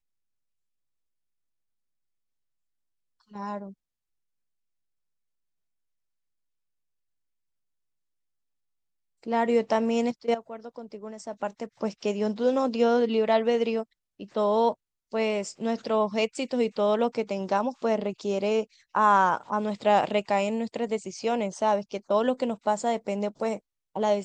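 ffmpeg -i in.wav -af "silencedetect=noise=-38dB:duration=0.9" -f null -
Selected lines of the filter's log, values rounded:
silence_start: 0.00
silence_end: 3.35 | silence_duration: 3.35
silence_start: 3.70
silence_end: 9.26 | silence_duration: 5.56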